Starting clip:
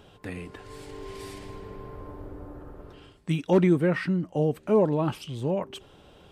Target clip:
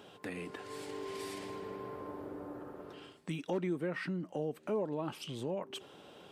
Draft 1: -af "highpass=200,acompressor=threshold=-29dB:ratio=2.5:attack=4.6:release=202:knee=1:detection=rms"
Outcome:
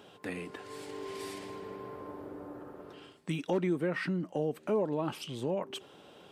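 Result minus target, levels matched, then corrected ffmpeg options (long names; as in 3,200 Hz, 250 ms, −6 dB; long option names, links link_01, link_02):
downward compressor: peak gain reduction −4.5 dB
-af "highpass=200,acompressor=threshold=-36.5dB:ratio=2.5:attack=4.6:release=202:knee=1:detection=rms"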